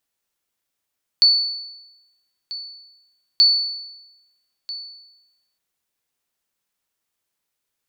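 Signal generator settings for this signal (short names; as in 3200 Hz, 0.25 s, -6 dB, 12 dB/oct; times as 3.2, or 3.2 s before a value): sonar ping 4470 Hz, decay 1.01 s, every 2.18 s, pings 2, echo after 1.29 s, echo -17.5 dB -7.5 dBFS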